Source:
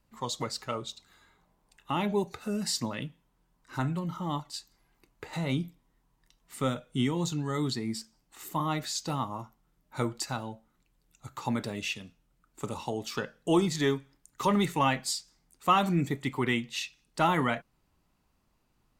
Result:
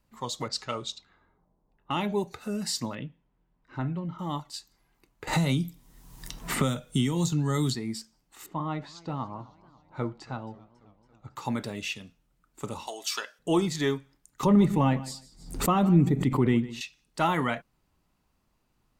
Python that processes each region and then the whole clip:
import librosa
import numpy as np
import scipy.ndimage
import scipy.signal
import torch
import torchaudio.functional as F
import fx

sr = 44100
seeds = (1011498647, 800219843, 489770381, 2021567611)

y = fx.chain(x, sr, fx.env_lowpass(base_hz=590.0, full_db=-34.5),
    fx.lowpass(hz=6400.0, slope=12),
    fx.high_shelf(hz=3600.0, db=10.0), at=(0.48, 2.0))
y = fx.chain(y, sr, fx.lowpass(hz=2400.0, slope=12),
    fx.peak_eq(hz=1200.0, db=-5.0, octaves=1.3), at=(2.95, 4.19))
y = fx.chain(y, sr, fx.bass_treble(bass_db=6, treble_db=9),
    fx.band_squash(depth_pct=100), at=(5.27, 7.75))
y = fx.chain(y, sr, fx.spacing_loss(db_at_10k=28),
    fx.echo_warbled(ms=274, feedback_pct=65, rate_hz=2.8, cents=167, wet_db=-22.0), at=(8.46, 11.36))
y = fx.chain(y, sr, fx.highpass(hz=680.0, slope=12),
    fx.peak_eq(hz=8800.0, db=9.5, octaves=2.9),
    fx.comb(ms=3.0, depth=0.35), at=(12.87, 13.39))
y = fx.chain(y, sr, fx.tilt_shelf(db=9.0, hz=690.0),
    fx.echo_feedback(ms=151, feedback_pct=20, wet_db=-17.5),
    fx.pre_swell(db_per_s=99.0), at=(14.43, 16.81))